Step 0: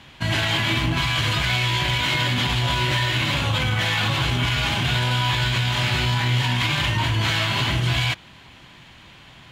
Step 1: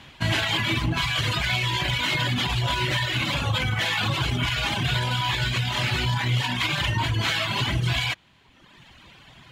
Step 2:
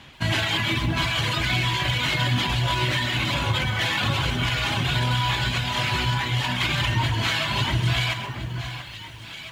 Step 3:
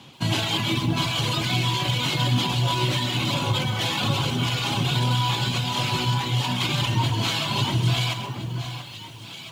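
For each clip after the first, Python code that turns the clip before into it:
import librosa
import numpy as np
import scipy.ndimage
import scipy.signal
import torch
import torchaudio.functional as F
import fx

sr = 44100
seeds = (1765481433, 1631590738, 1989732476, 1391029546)

y1 = fx.dereverb_blind(x, sr, rt60_s=1.3)
y2 = fx.echo_alternate(y1, sr, ms=681, hz=1700.0, feedback_pct=52, wet_db=-6.5)
y2 = fx.echo_crushed(y2, sr, ms=131, feedback_pct=35, bits=8, wet_db=-11)
y3 = scipy.signal.sosfilt(scipy.signal.butter(4, 110.0, 'highpass', fs=sr, output='sos'), y2)
y3 = fx.peak_eq(y3, sr, hz=1800.0, db=-13.0, octaves=0.86)
y3 = fx.notch(y3, sr, hz=630.0, q=12.0)
y3 = y3 * 10.0 ** (3.0 / 20.0)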